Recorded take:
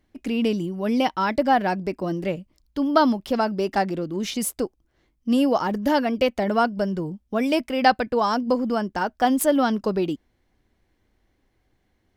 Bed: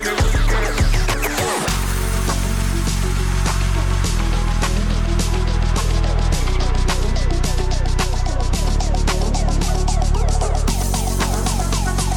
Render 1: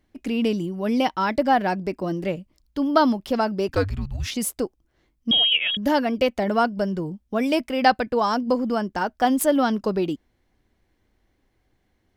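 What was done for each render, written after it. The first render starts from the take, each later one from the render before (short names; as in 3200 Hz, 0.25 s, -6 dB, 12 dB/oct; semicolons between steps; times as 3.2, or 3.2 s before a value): 3.68–4.31 frequency shift -290 Hz; 5.31–5.77 inverted band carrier 3500 Hz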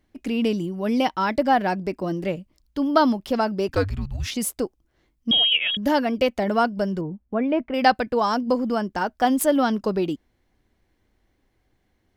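7.01–7.74 Bessel low-pass 1600 Hz, order 4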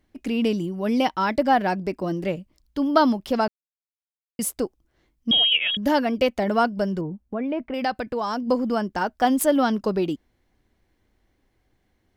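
3.48–4.39 mute; 7.24–8.46 compressor 2:1, threshold -26 dBFS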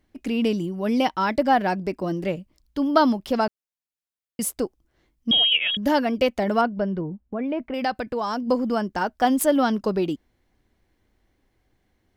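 6.61–7.39 air absorption 280 m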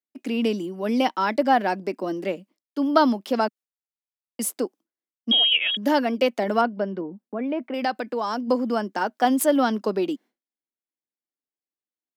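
expander -41 dBFS; steep high-pass 210 Hz 36 dB/oct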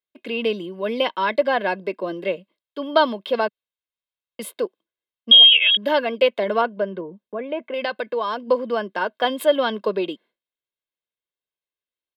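resonant high shelf 4600 Hz -9 dB, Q 3; comb 1.9 ms, depth 65%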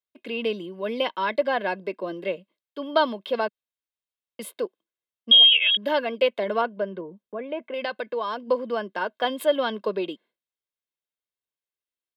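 gain -4 dB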